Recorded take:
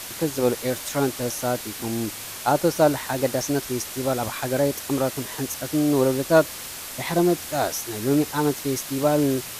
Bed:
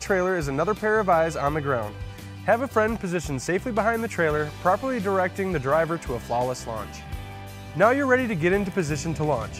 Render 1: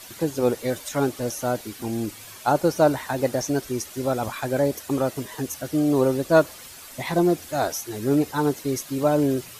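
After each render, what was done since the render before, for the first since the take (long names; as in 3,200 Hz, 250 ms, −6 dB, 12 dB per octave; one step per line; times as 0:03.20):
broadband denoise 10 dB, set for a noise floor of −36 dBFS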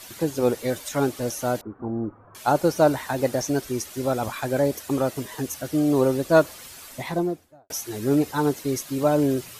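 0:01.61–0:02.35: Chebyshev low-pass filter 1,300 Hz, order 4
0:06.84–0:07.70: fade out and dull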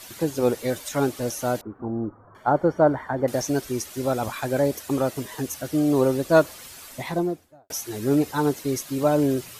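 0:01.82–0:03.28: Savitzky-Golay smoothing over 41 samples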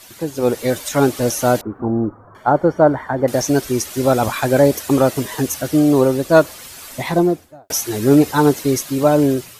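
automatic gain control gain up to 12 dB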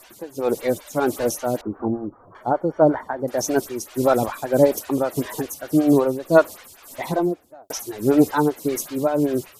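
amplitude tremolo 1.7 Hz, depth 55%
phaser with staggered stages 5.2 Hz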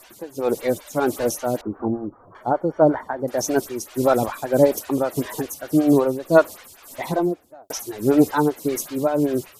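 no processing that can be heard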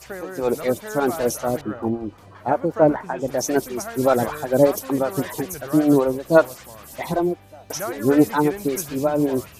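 mix in bed −11.5 dB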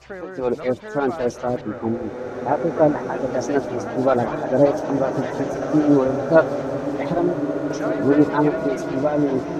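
high-frequency loss of the air 160 metres
slow-attack reverb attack 2,250 ms, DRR 4 dB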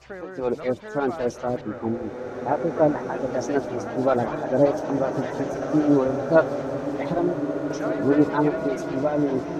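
level −3 dB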